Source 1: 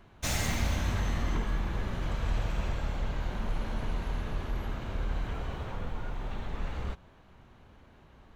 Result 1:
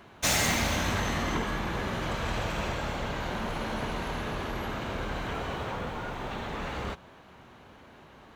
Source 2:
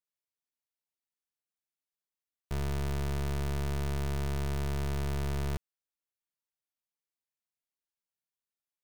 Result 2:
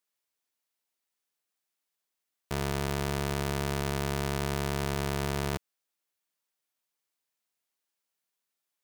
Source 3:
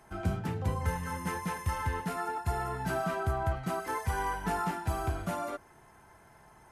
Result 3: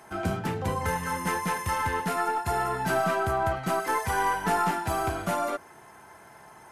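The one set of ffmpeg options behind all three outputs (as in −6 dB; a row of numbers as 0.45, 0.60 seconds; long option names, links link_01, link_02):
-filter_complex "[0:a]highpass=frequency=250:poles=1,asplit=2[link_01][link_02];[link_02]aeval=exprs='clip(val(0),-1,0.00944)':channel_layout=same,volume=-9.5dB[link_03];[link_01][link_03]amix=inputs=2:normalize=0,volume=6dB"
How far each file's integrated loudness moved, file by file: +3.5, +2.5, +6.0 LU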